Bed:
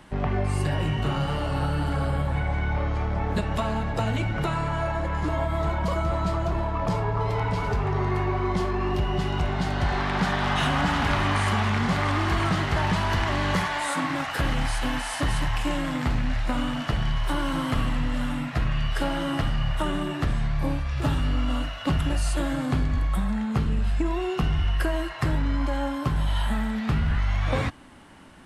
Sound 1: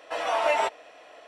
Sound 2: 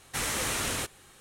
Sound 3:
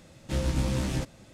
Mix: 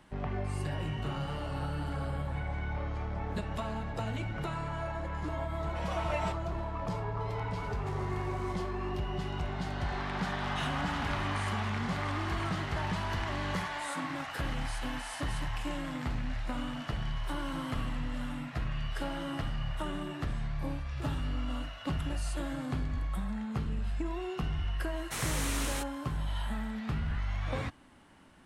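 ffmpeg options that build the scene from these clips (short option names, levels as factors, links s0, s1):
-filter_complex "[0:a]volume=0.335[s0];[3:a]acompressor=threshold=0.0224:ratio=6:attack=3.2:release=140:knee=1:detection=peak[s1];[1:a]atrim=end=1.27,asetpts=PTS-STARTPTS,volume=0.266,afade=t=in:d=0.004:c=hsin,afade=t=out:st=1.266:d=0.004:c=hsin,adelay=5640[s2];[s1]atrim=end=1.33,asetpts=PTS-STARTPTS,volume=0.299,afade=t=in:d=0.004:c=hsin,afade=t=out:st=1.326:d=0.004:c=hsin,adelay=7570[s3];[2:a]atrim=end=1.2,asetpts=PTS-STARTPTS,volume=0.531,afade=t=in:d=0.004:c=hsin,afade=t=out:st=1.196:d=0.004:c=hsin,adelay=24970[s4];[s0][s2][s3][s4]amix=inputs=4:normalize=0"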